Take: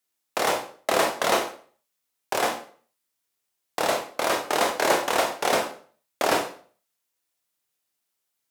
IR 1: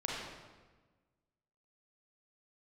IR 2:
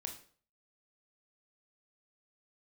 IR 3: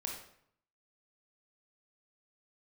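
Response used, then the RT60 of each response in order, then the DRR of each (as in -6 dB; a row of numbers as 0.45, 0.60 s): 2; 1.3, 0.45, 0.65 s; -4.5, 3.0, -0.5 dB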